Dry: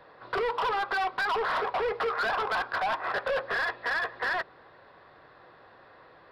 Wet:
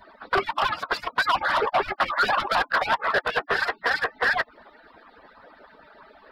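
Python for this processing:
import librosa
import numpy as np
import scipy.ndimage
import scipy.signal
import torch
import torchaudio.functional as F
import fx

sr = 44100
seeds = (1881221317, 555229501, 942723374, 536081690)

y = fx.hpss_only(x, sr, part='percussive')
y = F.gain(torch.from_numpy(y), 9.0).numpy()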